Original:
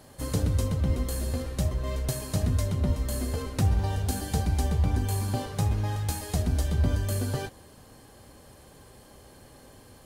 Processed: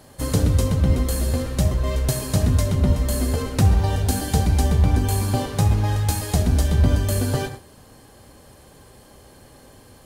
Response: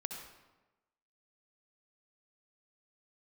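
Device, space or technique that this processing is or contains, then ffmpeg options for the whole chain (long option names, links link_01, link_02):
keyed gated reverb: -filter_complex "[0:a]asplit=3[link_01][link_02][link_03];[1:a]atrim=start_sample=2205[link_04];[link_02][link_04]afir=irnorm=-1:irlink=0[link_05];[link_03]apad=whole_len=443410[link_06];[link_05][link_06]sidechaingate=range=-33dB:threshold=-44dB:ratio=16:detection=peak,volume=-2.5dB[link_07];[link_01][link_07]amix=inputs=2:normalize=0,volume=3.5dB"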